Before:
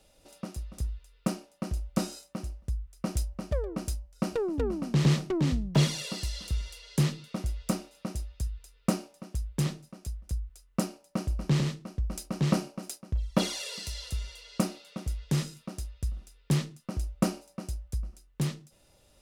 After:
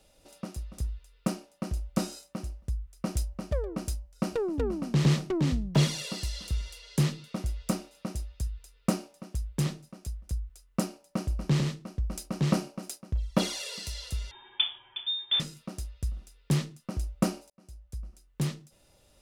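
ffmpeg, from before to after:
-filter_complex "[0:a]asettb=1/sr,asplit=3[s0][s1][s2];[s0]atrim=end=14.314[s3];[s1]atrim=start=14.31:end=15.4,asetpts=PTS-STARTPTS,afade=t=in:d=0.004:c=qsin,afade=t=out:st=1.086:d=0.004:c=qsin,lowpass=f=3100:t=q:w=0.5098,lowpass=f=3100:t=q:w=0.6013,lowpass=f=3100:t=q:w=0.9,lowpass=f=3100:t=q:w=2.563,afreqshift=-3700[s4];[s2]atrim=start=15.396[s5];[s3][s4]acrossfade=d=0.004:c1=hsin:c2=qsin[s6];[s6][s5]acrossfade=d=0.004:c1=qsin:c2=hsin,asplit=2[s7][s8];[s7]atrim=end=17.5,asetpts=PTS-STARTPTS,afade=t=out:st=17.496:d=0.004:c=hsin[s9];[s8]atrim=start=17.5,asetpts=PTS-STARTPTS,afade=t=in:d=0.93[s10];[s9][s10]concat=n=2:v=0:a=1"

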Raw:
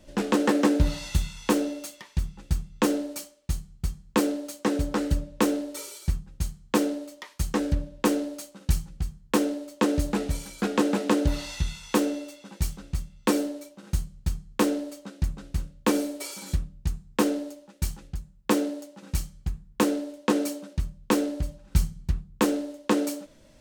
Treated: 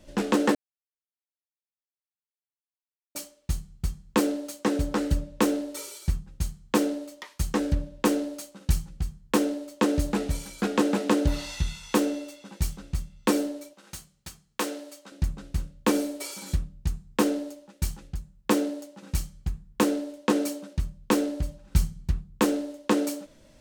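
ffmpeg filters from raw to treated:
-filter_complex "[0:a]asettb=1/sr,asplit=3[s0][s1][s2];[s0]atrim=end=13.734[s3];[s1]atrim=start=13.73:end=15.12,asetpts=PTS-STARTPTS,afade=t=in:d=0.004:c=qsin,afade=t=out:st=1.386:d=0.004:c=qsin,highpass=f=890:p=1[s4];[s2]atrim=start=15.116[s5];[s3][s4]acrossfade=d=0.004:c1=hsin:c2=qsin[s6];[s6][s5]acrossfade=d=0.004:c1=qsin:c2=hsin,asplit=3[s7][s8][s9];[s7]atrim=end=0.55,asetpts=PTS-STARTPTS,afade=t=out:st=0.546:d=0.004:c=hsin[s10];[s8]atrim=start=0.55:end=3.15,asetpts=PTS-STARTPTS,volume=0[s11];[s9]atrim=start=3.15,asetpts=PTS-STARTPTS,afade=t=in:d=0.004:c=hsin[s12];[s10][s11][s12]concat=n=3:v=0:a=1"

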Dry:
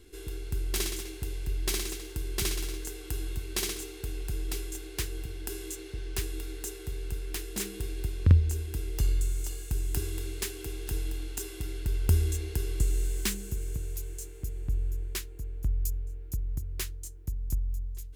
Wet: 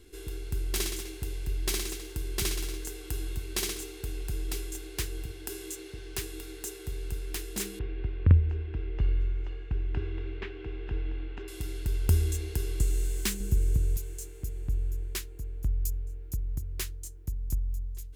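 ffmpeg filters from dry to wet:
-filter_complex "[0:a]asettb=1/sr,asplit=3[s0][s1][s2];[s0]atrim=end=5.314[s3];[s1]atrim=start=5.31:end=6.86,asetpts=PTS-STARTPTS,afade=t=in:d=0.004:c=qsin,afade=t=out:st=1.546:d=0.004:c=qsin,lowshelf=f=73:g=-10[s4];[s2]atrim=start=6.856[s5];[s3][s4]acrossfade=d=0.004:c1=hsin:c2=qsin[s6];[s6][s5]acrossfade=d=0.004:c1=qsin:c2=hsin,asettb=1/sr,asplit=3[s7][s8][s9];[s7]atrim=end=7.794[s10];[s8]atrim=start=7.79:end=11.48,asetpts=PTS-STARTPTS,afade=t=in:d=0.004:c=qsin,afade=t=out:st=3.686:d=0.004:c=qsin,lowpass=f=2700:w=0.5412,lowpass=f=2700:w=1.3066[s11];[s9]atrim=start=11.476[s12];[s10][s11]acrossfade=d=0.004:c1=hsin:c2=qsin[s13];[s13][s12]acrossfade=d=0.004:c1=qsin:c2=hsin,asettb=1/sr,asplit=3[s14][s15][s16];[s14]atrim=end=13.404[s17];[s15]atrim=start=13.4:end=13.97,asetpts=PTS-STARTPTS,afade=t=in:d=0.004:c=qsin,afade=t=out:st=0.566:d=0.004:c=qsin,lowshelf=f=290:g=9[s18];[s16]atrim=start=13.966[s19];[s17][s18]acrossfade=d=0.004:c1=hsin:c2=qsin[s20];[s20][s19]acrossfade=d=0.004:c1=qsin:c2=hsin"

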